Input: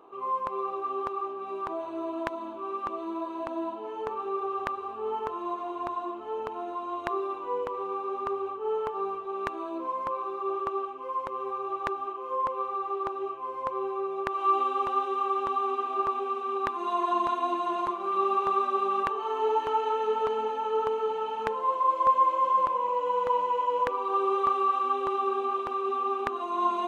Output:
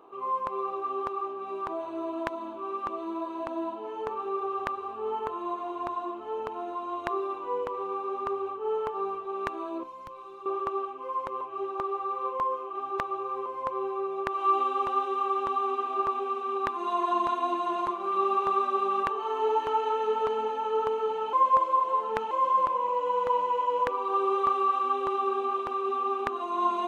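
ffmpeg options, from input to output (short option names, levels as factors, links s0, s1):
-filter_complex "[0:a]asettb=1/sr,asplit=3[s0][s1][s2];[s0]atrim=end=5.144[s3];[s1]atrim=start=5.14:end=5.62,asetpts=PTS-STARTPTS,afade=t=in:d=0.004:c=qsin,afade=t=out:st=0.476:d=0.004:c=qsin,asuperstop=centerf=5400:order=4:qfactor=4.9[s4];[s2]atrim=start=5.616[s5];[s3][s4]acrossfade=d=0.004:c1=hsin:c2=qsin[s6];[s6][s5]acrossfade=d=0.004:c1=qsin:c2=hsin,asettb=1/sr,asplit=3[s7][s8][s9];[s7]atrim=end=9.834[s10];[s8]atrim=start=9.83:end=10.46,asetpts=PTS-STARTPTS,afade=t=in:d=0.004:c=qsin,afade=t=out:st=0.626:d=0.004:c=qsin,acrossover=split=160|3000[s11][s12][s13];[s12]acompressor=threshold=0.00398:ratio=2.5:attack=3.2:release=140:knee=2.83:detection=peak[s14];[s11][s14][s13]amix=inputs=3:normalize=0[s15];[s9]atrim=start=10.456[s16];[s10][s15]acrossfade=d=0.004:c1=hsin:c2=qsin[s17];[s17][s16]acrossfade=d=0.004:c1=qsin:c2=hsin,asplit=5[s18][s19][s20][s21][s22];[s18]atrim=end=11.412[s23];[s19]atrim=start=11.408:end=13.462,asetpts=PTS-STARTPTS,areverse[s24];[s20]atrim=start=13.458:end=21.332[s25];[s21]atrim=start=21.328:end=22.312,asetpts=PTS-STARTPTS,areverse[s26];[s22]atrim=start=22.308[s27];[s23][s24]acrossfade=d=0.004:c1=hsin:c2=hsin[s28];[s28][s25]acrossfade=d=0.004:c1=hsin:c2=hsin[s29];[s29][s26]acrossfade=d=0.004:c1=hsin:c2=hsin[s30];[s30][s27]acrossfade=d=0.004:c1=hsin:c2=hsin"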